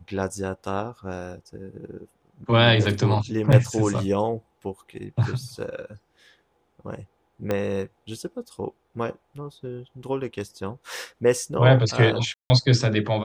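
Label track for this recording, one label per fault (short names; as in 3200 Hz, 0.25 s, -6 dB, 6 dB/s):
3.520000	3.530000	gap 5.8 ms
7.510000	7.510000	pop -12 dBFS
12.340000	12.500000	gap 0.16 s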